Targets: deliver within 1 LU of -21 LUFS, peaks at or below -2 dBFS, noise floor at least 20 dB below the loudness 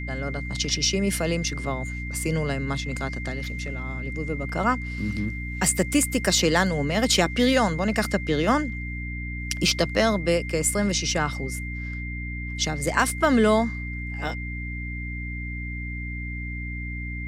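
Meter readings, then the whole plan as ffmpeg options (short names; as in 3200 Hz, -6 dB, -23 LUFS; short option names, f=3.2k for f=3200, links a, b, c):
hum 60 Hz; harmonics up to 300 Hz; hum level -30 dBFS; steady tone 2100 Hz; tone level -35 dBFS; loudness -25.0 LUFS; peak -7.0 dBFS; loudness target -21.0 LUFS
-> -af "bandreject=f=60:t=h:w=6,bandreject=f=120:t=h:w=6,bandreject=f=180:t=h:w=6,bandreject=f=240:t=h:w=6,bandreject=f=300:t=h:w=6"
-af "bandreject=f=2.1k:w=30"
-af "volume=4dB"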